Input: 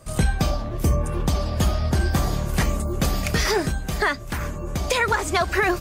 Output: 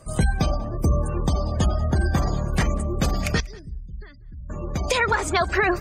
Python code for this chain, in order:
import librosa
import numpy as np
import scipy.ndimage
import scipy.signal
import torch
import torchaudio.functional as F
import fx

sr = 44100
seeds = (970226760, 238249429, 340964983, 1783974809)

y = fx.tone_stack(x, sr, knobs='10-0-1', at=(3.4, 4.5))
y = fx.spec_gate(y, sr, threshold_db=-30, keep='strong')
y = y + 10.0 ** (-23.5 / 20.0) * np.pad(y, (int(190 * sr / 1000.0), 0))[:len(y)]